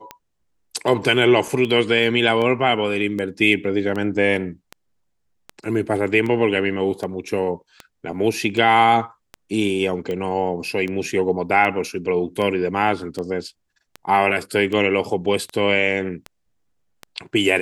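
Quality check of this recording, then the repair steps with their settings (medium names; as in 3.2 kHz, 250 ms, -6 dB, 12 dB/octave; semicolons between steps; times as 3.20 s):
tick 78 rpm -16 dBFS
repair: de-click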